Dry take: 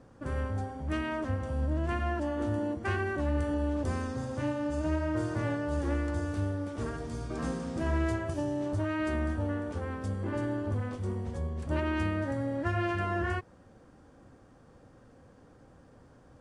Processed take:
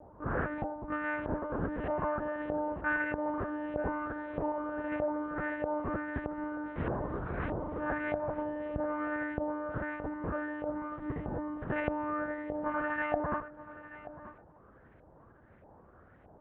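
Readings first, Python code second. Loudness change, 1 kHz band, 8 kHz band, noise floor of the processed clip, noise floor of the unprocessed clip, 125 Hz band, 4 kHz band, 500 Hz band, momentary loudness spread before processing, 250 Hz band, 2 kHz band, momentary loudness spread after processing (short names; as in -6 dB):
-2.5 dB, +2.0 dB, under -25 dB, -59 dBFS, -57 dBFS, -10.5 dB, under -10 dB, -0.5 dB, 5 LU, -3.5 dB, +2.0 dB, 5 LU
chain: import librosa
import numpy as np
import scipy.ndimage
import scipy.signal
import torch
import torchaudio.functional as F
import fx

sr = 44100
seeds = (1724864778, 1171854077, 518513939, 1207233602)

p1 = fx.rider(x, sr, range_db=10, speed_s=0.5)
p2 = x + (p1 * librosa.db_to_amplitude(1.5))
p3 = p2 + 10.0 ** (-14.0 / 20.0) * np.pad(p2, (int(90 * sr / 1000.0), 0))[:len(p2)]
p4 = fx.filter_lfo_lowpass(p3, sr, shape='saw_up', hz=1.6, low_hz=710.0, high_hz=2400.0, q=2.9)
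p5 = fx.lpc_monotone(p4, sr, seeds[0], pitch_hz=300.0, order=8)
p6 = scipy.signal.sosfilt(scipy.signal.butter(2, 46.0, 'highpass', fs=sr, output='sos'), p5)
p7 = p6 + fx.echo_single(p6, sr, ms=931, db=-15.5, dry=0)
y = p7 * librosa.db_to_amplitude(-8.5)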